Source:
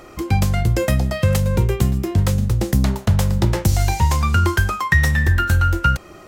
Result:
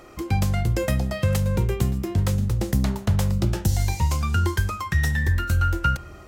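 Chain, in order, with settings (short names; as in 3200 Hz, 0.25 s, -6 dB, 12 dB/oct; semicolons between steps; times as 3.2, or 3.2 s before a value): darkening echo 71 ms, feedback 76%, level -20.5 dB; 3.31–5.62 cascading phaser rising 1.4 Hz; gain -5 dB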